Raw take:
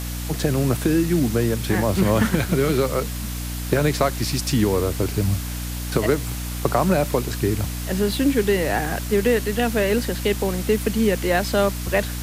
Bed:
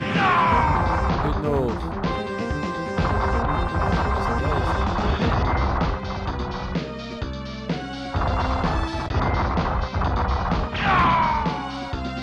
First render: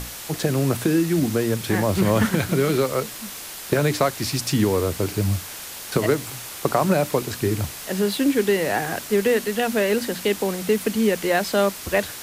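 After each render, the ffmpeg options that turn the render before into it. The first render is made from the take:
-af "bandreject=f=60:t=h:w=6,bandreject=f=120:t=h:w=6,bandreject=f=180:t=h:w=6,bandreject=f=240:t=h:w=6,bandreject=f=300:t=h:w=6"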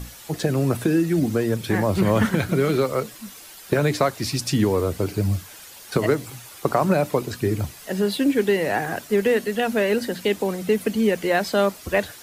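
-af "afftdn=nr=10:nf=-36"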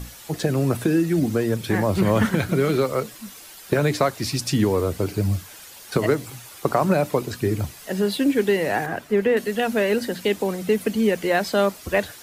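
-filter_complex "[0:a]asettb=1/sr,asplit=3[s0][s1][s2];[s0]atrim=end=8.864[s3];[s1]atrim=start=8.86:end=9.37,asetpts=PTS-STARTPTS,afade=t=in:d=0.004:c=qsin,afade=t=out:st=0.506:d=0.004:c=qsin,acrossover=split=3100[s4][s5];[s5]acompressor=threshold=0.00316:ratio=4:attack=1:release=60[s6];[s4][s6]amix=inputs=2:normalize=0[s7];[s2]atrim=start=9.366[s8];[s3][s7]acrossfade=d=0.004:c1=hsin:c2=qsin[s9];[s9][s8]acrossfade=d=0.004:c1=qsin:c2=hsin"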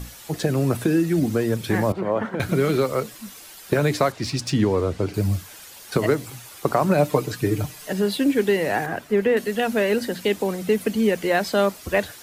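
-filter_complex "[0:a]asettb=1/sr,asplit=3[s0][s1][s2];[s0]atrim=end=1.924[s3];[s1]atrim=start=1.92:end=2.4,asetpts=PTS-STARTPTS,afade=t=in:d=0.004:c=qsin,afade=t=out:st=0.476:d=0.004:c=qsin,bandpass=f=660:t=q:w=0.99[s4];[s2]atrim=start=2.396[s5];[s3][s4]acrossfade=d=0.004:c1=hsin:c2=qsin[s6];[s6][s5]acrossfade=d=0.004:c1=qsin:c2=hsin,asettb=1/sr,asplit=3[s7][s8][s9];[s7]atrim=end=4.124[s10];[s8]atrim=start=4.12:end=5.14,asetpts=PTS-STARTPTS,afade=t=in:d=0.004:c=qsin,afade=t=out:st=1.016:d=0.004:c=qsin,adynamicsmooth=sensitivity=2:basefreq=6300[s11];[s9]atrim=start=5.136[s12];[s10][s11]acrossfade=d=0.004:c1=hsin:c2=qsin[s13];[s13][s12]acrossfade=d=0.004:c1=qsin:c2=hsin,asettb=1/sr,asplit=3[s14][s15][s16];[s14]atrim=end=6.974[s17];[s15]atrim=start=6.97:end=7.93,asetpts=PTS-STARTPTS,afade=t=in:d=0.004:c=qsin,afade=t=out:st=0.956:d=0.004:c=qsin,aecho=1:1:6.6:0.65,atrim=end_sample=42336[s18];[s16]atrim=start=7.926[s19];[s17][s18]acrossfade=d=0.004:c1=hsin:c2=qsin[s20];[s20][s19]acrossfade=d=0.004:c1=qsin:c2=hsin"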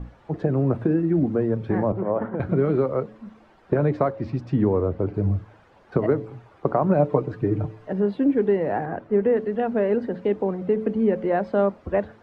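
-af "lowpass=1000,bandreject=f=109.1:t=h:w=4,bandreject=f=218.2:t=h:w=4,bandreject=f=327.3:t=h:w=4,bandreject=f=436.4:t=h:w=4,bandreject=f=545.5:t=h:w=4"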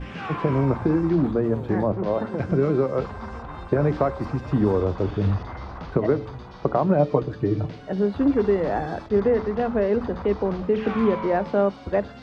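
-filter_complex "[1:a]volume=0.2[s0];[0:a][s0]amix=inputs=2:normalize=0"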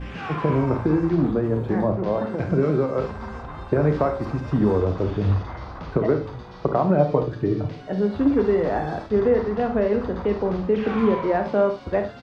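-filter_complex "[0:a]asplit=2[s0][s1];[s1]adelay=33,volume=0.266[s2];[s0][s2]amix=inputs=2:normalize=0,aecho=1:1:53|71:0.299|0.237"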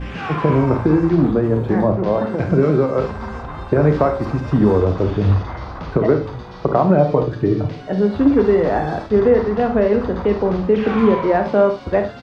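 -af "volume=1.88,alimiter=limit=0.708:level=0:latency=1"

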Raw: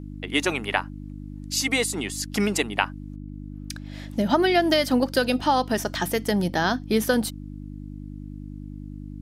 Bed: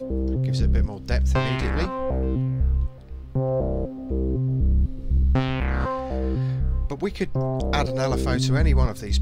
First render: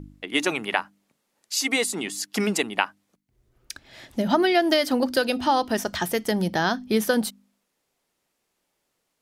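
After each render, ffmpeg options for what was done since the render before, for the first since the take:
-af "bandreject=f=50:t=h:w=4,bandreject=f=100:t=h:w=4,bandreject=f=150:t=h:w=4,bandreject=f=200:t=h:w=4,bandreject=f=250:t=h:w=4,bandreject=f=300:t=h:w=4"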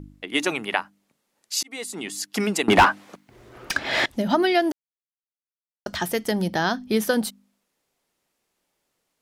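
-filter_complex "[0:a]asettb=1/sr,asplit=3[s0][s1][s2];[s0]atrim=end=2.684[s3];[s1]atrim=start=2.68:end=4.06,asetpts=PTS-STARTPTS,afade=t=in:d=0.004:c=qsin,afade=t=out:st=1.376:d=0.004:c=qsin,asplit=2[s4][s5];[s5]highpass=f=720:p=1,volume=70.8,asoftclip=type=tanh:threshold=0.708[s6];[s4][s6]amix=inputs=2:normalize=0,lowpass=f=1500:p=1,volume=0.501[s7];[s2]atrim=start=4.056[s8];[s3][s7]acrossfade=d=0.004:c1=hsin:c2=qsin[s9];[s9][s8]acrossfade=d=0.004:c1=qsin:c2=hsin,asplit=4[s10][s11][s12][s13];[s10]atrim=end=1.63,asetpts=PTS-STARTPTS,afade=t=out:st=1.626:d=0.004:c=hsin[s14];[s11]atrim=start=1.63:end=4.72,asetpts=PTS-STARTPTS,afade=t=in:d=0.53,afade=t=out:st=3.086:d=0.004:c=hsin[s15];[s12]atrim=start=4.72:end=5.86,asetpts=PTS-STARTPTS,volume=0[s16];[s13]atrim=start=5.86,asetpts=PTS-STARTPTS,afade=t=in:d=0.004:c=hsin[s17];[s14][s15][s16][s17]concat=n=4:v=0:a=1"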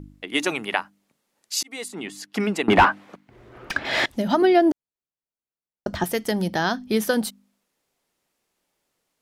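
-filter_complex "[0:a]asettb=1/sr,asplit=3[s0][s1][s2];[s0]atrim=end=1.884[s3];[s1]atrim=start=1.88:end=3.85,asetpts=PTS-STARTPTS,afade=t=in:d=0.004:c=qsin,afade=t=out:st=1.966:d=0.004:c=qsin,bass=f=250:g=1,treble=f=4000:g=-10[s4];[s2]atrim=start=3.846[s5];[s3][s4]acrossfade=d=0.004:c1=hsin:c2=qsin[s6];[s6][s5]acrossfade=d=0.004:c1=qsin:c2=hsin,asettb=1/sr,asplit=3[s7][s8][s9];[s7]atrim=end=4.424[s10];[s8]atrim=start=4.42:end=6.04,asetpts=PTS-STARTPTS,afade=t=in:d=0.004:c=qsin,afade=t=out:st=1.616:d=0.004:c=qsin,tiltshelf=f=1100:g=7[s11];[s9]atrim=start=6.036[s12];[s10][s11]acrossfade=d=0.004:c1=hsin:c2=qsin[s13];[s13][s12]acrossfade=d=0.004:c1=qsin:c2=hsin"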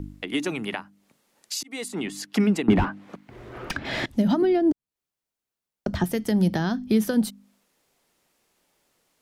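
-filter_complex "[0:a]asplit=2[s0][s1];[s1]alimiter=limit=0.251:level=0:latency=1:release=246,volume=1.06[s2];[s0][s2]amix=inputs=2:normalize=0,acrossover=split=290[s3][s4];[s4]acompressor=threshold=0.0224:ratio=3[s5];[s3][s5]amix=inputs=2:normalize=0"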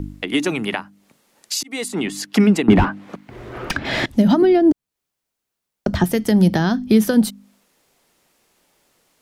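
-af "volume=2.24,alimiter=limit=0.794:level=0:latency=1"

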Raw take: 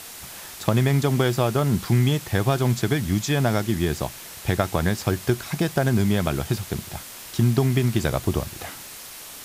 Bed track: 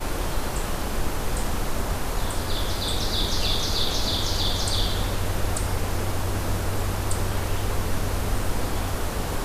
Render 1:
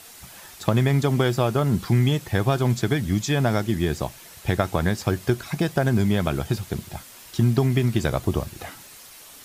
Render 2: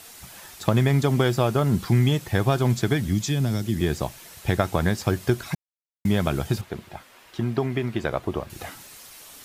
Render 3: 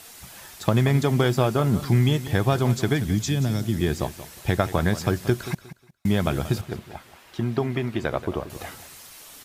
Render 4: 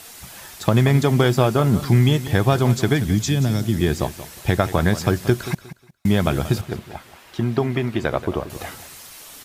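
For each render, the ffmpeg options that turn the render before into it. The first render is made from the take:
-af "afftdn=nr=7:nf=-40"
-filter_complex "[0:a]asettb=1/sr,asplit=3[s0][s1][s2];[s0]atrim=end=3.084[s3];[s1]atrim=start=3.08:end=3.81,asetpts=PTS-STARTPTS,afade=t=in:d=0.004:c=qsin,afade=t=out:st=0.726:d=0.004:c=qsin,acrossover=split=320|3000[s4][s5][s6];[s5]acompressor=threshold=0.0158:ratio=6:attack=3.2:release=140:knee=2.83:detection=peak[s7];[s4][s7][s6]amix=inputs=3:normalize=0[s8];[s2]atrim=start=3.806[s9];[s3][s8]acrossfade=d=0.004:c1=hsin:c2=qsin[s10];[s10][s9]acrossfade=d=0.004:c1=qsin:c2=hsin,asettb=1/sr,asplit=3[s11][s12][s13];[s11]atrim=end=6.614[s14];[s12]atrim=start=6.61:end=8.5,asetpts=PTS-STARTPTS,afade=t=in:d=0.004:c=qsin,afade=t=out:st=1.886:d=0.004:c=qsin,bass=f=250:g=-9,treble=f=4000:g=-14[s15];[s13]atrim=start=8.496[s16];[s14][s15]acrossfade=d=0.004:c1=hsin:c2=qsin[s17];[s17][s16]acrossfade=d=0.004:c1=qsin:c2=hsin,asplit=3[s18][s19][s20];[s18]atrim=end=5.55,asetpts=PTS-STARTPTS,afade=t=out:st=5.546:d=0.004:c=hsin[s21];[s19]atrim=start=5.55:end=6.05,asetpts=PTS-STARTPTS,volume=0[s22];[s20]atrim=start=6.05,asetpts=PTS-STARTPTS,afade=t=in:d=0.004:c=hsin[s23];[s21][s22][s23]concat=n=3:v=0:a=1"
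-af "aecho=1:1:180|360|540:0.2|0.0499|0.0125"
-af "volume=1.58,alimiter=limit=0.708:level=0:latency=1"

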